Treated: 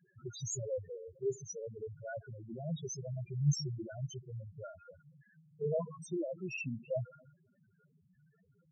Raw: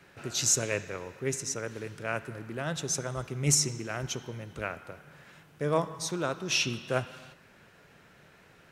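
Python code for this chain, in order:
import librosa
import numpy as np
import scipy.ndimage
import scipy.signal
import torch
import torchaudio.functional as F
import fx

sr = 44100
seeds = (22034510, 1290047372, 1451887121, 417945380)

y = fx.spec_topn(x, sr, count=2)
y = fx.dynamic_eq(y, sr, hz=250.0, q=0.7, threshold_db=-48.0, ratio=4.0, max_db=4)
y = y * 10.0 ** (-2.0 / 20.0)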